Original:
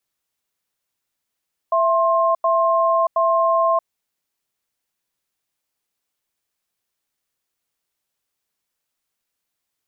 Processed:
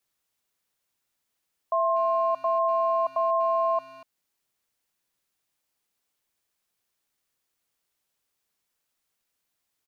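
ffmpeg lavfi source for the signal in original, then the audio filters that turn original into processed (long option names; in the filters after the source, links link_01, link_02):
-f lavfi -i "aevalsrc='0.141*(sin(2*PI*664*t)+sin(2*PI*1060*t))*clip(min(mod(t,0.72),0.63-mod(t,0.72))/0.005,0,1)':duration=2.07:sample_rate=44100"
-filter_complex "[0:a]alimiter=limit=-17.5dB:level=0:latency=1:release=447,asplit=2[link_01][link_02];[link_02]adelay=240,highpass=300,lowpass=3400,asoftclip=type=hard:threshold=-27.5dB,volume=-17dB[link_03];[link_01][link_03]amix=inputs=2:normalize=0"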